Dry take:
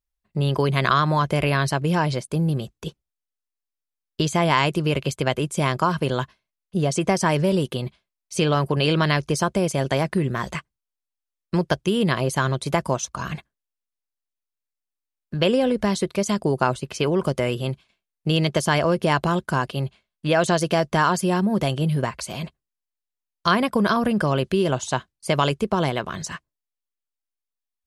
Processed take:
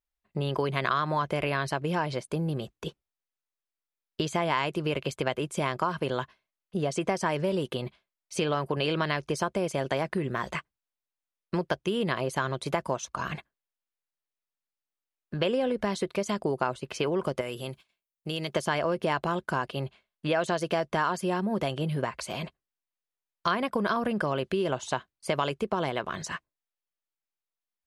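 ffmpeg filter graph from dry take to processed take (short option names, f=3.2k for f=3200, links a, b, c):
-filter_complex "[0:a]asettb=1/sr,asplit=3[a][b][c];[a]atrim=end=17.414[d];[b]atrim=start=17.41:end=18.54,asetpts=PTS-STARTPTS,afade=t=in:d=0.004:c=qsin,afade=t=out:st=1.126:d=0.004:c=qsin,aemphasis=mode=production:type=50fm,acompressor=threshold=-39dB:ratio=1.5:attack=3.2:release=140:knee=1:detection=peak,agate=range=-10dB:threshold=-55dB:ratio=16:release=100:detection=peak[e];[c]atrim=start=18.536[f];[d][e]acrossfade=d=0.004:c1=hsin:c2=qsin[g];[g][f]acrossfade=d=0.004:c1=qsin:c2=hsin,bass=f=250:g=-7,treble=f=4k:g=-7,acompressor=threshold=-28dB:ratio=2"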